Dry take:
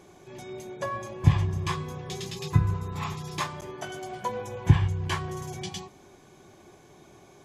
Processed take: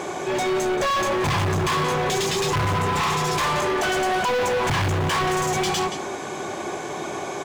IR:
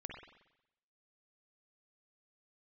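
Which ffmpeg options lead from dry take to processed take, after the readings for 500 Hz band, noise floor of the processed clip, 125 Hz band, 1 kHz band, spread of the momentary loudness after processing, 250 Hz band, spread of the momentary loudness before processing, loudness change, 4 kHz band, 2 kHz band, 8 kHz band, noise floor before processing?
+14.5 dB, -31 dBFS, -1.0 dB, +13.5 dB, 8 LU, +7.0 dB, 17 LU, +6.5 dB, +13.0 dB, +14.0 dB, +14.0 dB, -54 dBFS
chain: -filter_complex "[0:a]equalizer=f=8k:t=o:w=0.64:g=9,bandreject=f=60:t=h:w=6,bandreject=f=120:t=h:w=6,bandreject=f=180:t=h:w=6,bandreject=f=240:t=h:w=6,bandreject=f=300:t=h:w=6,bandreject=f=360:t=h:w=6,acrusher=bits=8:mode=log:mix=0:aa=0.000001,aecho=1:1:177:0.112,asplit=2[a][b];[b]highpass=f=720:p=1,volume=36dB,asoftclip=type=tanh:threshold=-6.5dB[c];[a][c]amix=inputs=2:normalize=0,lowpass=f=1.5k:p=1,volume=-6dB,volume=20.5dB,asoftclip=hard,volume=-20.5dB"

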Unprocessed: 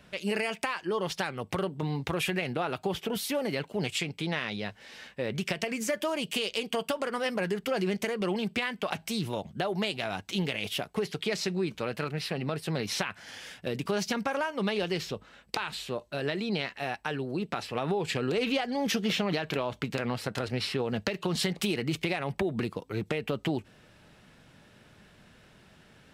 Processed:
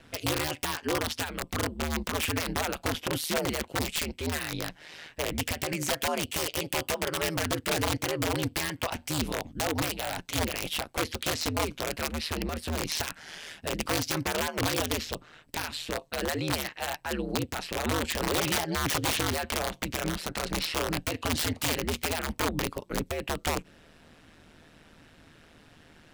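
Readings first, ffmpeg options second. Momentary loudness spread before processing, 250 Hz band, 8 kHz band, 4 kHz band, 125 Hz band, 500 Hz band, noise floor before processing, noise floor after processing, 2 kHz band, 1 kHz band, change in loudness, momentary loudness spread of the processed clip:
5 LU, -1.5 dB, +8.5 dB, +2.5 dB, +0.5 dB, -2.0 dB, -58 dBFS, -57 dBFS, +1.5 dB, +2.5 dB, +1.5 dB, 6 LU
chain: -af "aeval=exprs='(mod(15*val(0)+1,2)-1)/15':c=same,aeval=exprs='val(0)*sin(2*PI*78*n/s)':c=same,volume=4.5dB"

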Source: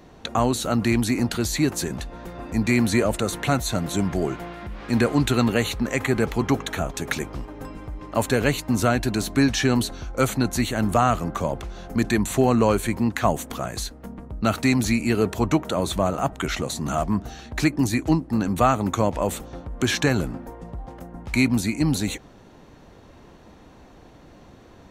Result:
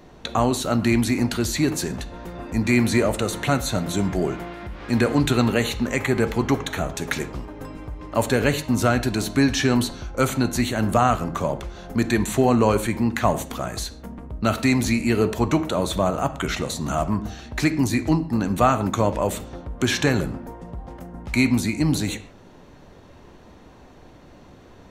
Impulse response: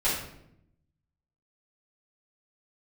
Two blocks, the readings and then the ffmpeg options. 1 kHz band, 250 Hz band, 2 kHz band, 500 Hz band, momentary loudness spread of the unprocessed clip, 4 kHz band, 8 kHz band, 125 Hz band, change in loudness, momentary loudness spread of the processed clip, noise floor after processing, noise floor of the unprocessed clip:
+1.0 dB, +1.0 dB, +1.0 dB, +1.0 dB, 14 LU, +0.5 dB, 0.0 dB, +1.0 dB, +1.0 dB, 13 LU, -48 dBFS, -49 dBFS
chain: -filter_complex "[0:a]asplit=2[a][b];[1:a]atrim=start_sample=2205,afade=t=out:st=0.21:d=0.01,atrim=end_sample=9702,lowpass=7.1k[c];[b][c]afir=irnorm=-1:irlink=0,volume=-20dB[d];[a][d]amix=inputs=2:normalize=0"

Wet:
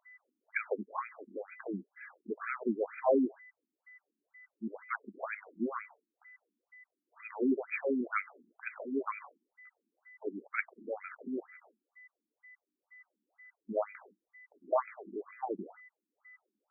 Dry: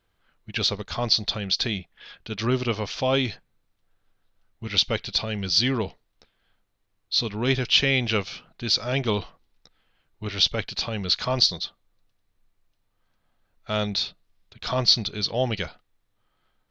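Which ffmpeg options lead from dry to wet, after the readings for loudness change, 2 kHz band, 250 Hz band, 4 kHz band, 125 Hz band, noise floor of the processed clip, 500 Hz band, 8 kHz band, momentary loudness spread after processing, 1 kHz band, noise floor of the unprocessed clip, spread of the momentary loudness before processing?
-12.5 dB, -9.5 dB, -6.5 dB, under -40 dB, under -25 dB, under -85 dBFS, -6.5 dB, n/a, 16 LU, -6.0 dB, -73 dBFS, 13 LU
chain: -af "aeval=exprs='val(0)+0.00251*sin(2*PI*2000*n/s)':c=same,afftfilt=real='re*between(b*sr/1024,260*pow(1800/260,0.5+0.5*sin(2*PI*2.1*pts/sr))/1.41,260*pow(1800/260,0.5+0.5*sin(2*PI*2.1*pts/sr))*1.41)':imag='im*between(b*sr/1024,260*pow(1800/260,0.5+0.5*sin(2*PI*2.1*pts/sr))/1.41,260*pow(1800/260,0.5+0.5*sin(2*PI*2.1*pts/sr))*1.41)':win_size=1024:overlap=0.75"

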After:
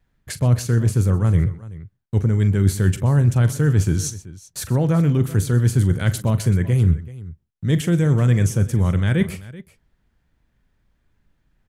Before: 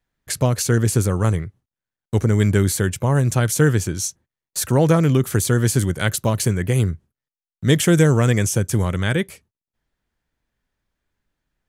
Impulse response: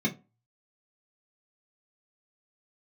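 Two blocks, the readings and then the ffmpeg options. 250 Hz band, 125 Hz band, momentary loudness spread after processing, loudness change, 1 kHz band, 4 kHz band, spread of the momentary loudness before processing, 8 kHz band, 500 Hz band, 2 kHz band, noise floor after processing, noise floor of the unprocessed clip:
-1.0 dB, +2.0 dB, 12 LU, 0.0 dB, -6.0 dB, -6.5 dB, 10 LU, -7.5 dB, -5.5 dB, -6.0 dB, -69 dBFS, under -85 dBFS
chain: -af "areverse,acompressor=threshold=-26dB:ratio=10,areverse,bass=f=250:g=8,treble=f=4k:g=-5,aecho=1:1:41|125|382:0.2|0.112|0.119,volume=6dB"

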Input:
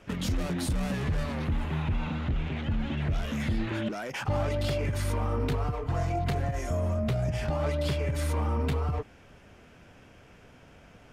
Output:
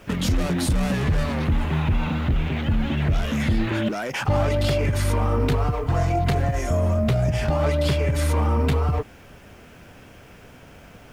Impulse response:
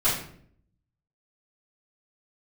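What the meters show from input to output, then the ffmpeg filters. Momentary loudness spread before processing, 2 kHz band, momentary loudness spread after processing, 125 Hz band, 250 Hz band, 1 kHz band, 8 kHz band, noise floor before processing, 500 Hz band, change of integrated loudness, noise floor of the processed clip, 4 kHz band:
3 LU, +7.5 dB, 3 LU, +7.5 dB, +7.5 dB, +7.5 dB, +7.5 dB, -54 dBFS, +7.5 dB, +7.5 dB, -47 dBFS, +7.5 dB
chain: -af "acrusher=bits=10:mix=0:aa=0.000001,volume=7.5dB"

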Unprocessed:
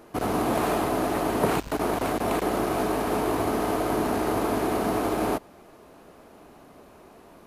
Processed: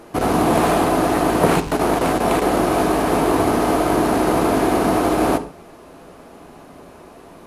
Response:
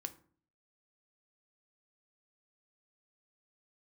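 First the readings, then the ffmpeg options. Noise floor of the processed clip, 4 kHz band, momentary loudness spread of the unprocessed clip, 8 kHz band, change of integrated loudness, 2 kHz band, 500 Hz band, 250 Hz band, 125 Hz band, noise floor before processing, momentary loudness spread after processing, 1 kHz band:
-43 dBFS, +8.0 dB, 2 LU, +8.0 dB, +8.0 dB, +8.0 dB, +8.0 dB, +8.5 dB, +8.5 dB, -51 dBFS, 2 LU, +8.5 dB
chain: -filter_complex "[0:a]asplit=2[a][b];[1:a]atrim=start_sample=2205,afade=t=out:st=0.13:d=0.01,atrim=end_sample=6174,asetrate=22491,aresample=44100[c];[b][c]afir=irnorm=-1:irlink=0,volume=9.5dB[d];[a][d]amix=inputs=2:normalize=0,volume=-4.5dB"

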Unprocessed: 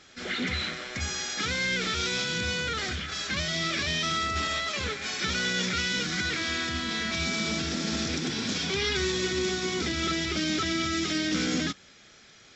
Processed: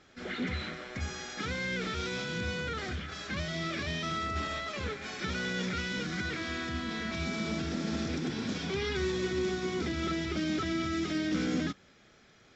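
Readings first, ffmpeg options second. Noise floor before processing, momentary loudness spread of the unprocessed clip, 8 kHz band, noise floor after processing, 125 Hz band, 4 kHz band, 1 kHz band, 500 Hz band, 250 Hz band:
-54 dBFS, 4 LU, n/a, -60 dBFS, -1.5 dB, -10.5 dB, -4.5 dB, -2.0 dB, -1.5 dB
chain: -af "highshelf=f=2.2k:g=-12,volume=-1.5dB"

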